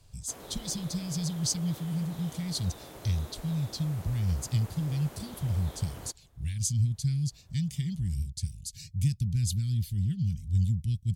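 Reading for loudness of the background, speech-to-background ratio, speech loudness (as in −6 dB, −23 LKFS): −47.0 LKFS, 15.5 dB, −31.5 LKFS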